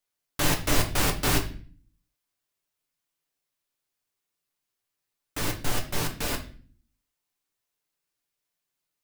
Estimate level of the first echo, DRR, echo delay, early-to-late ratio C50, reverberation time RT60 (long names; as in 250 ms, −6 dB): no echo audible, 2.0 dB, no echo audible, 11.5 dB, 0.45 s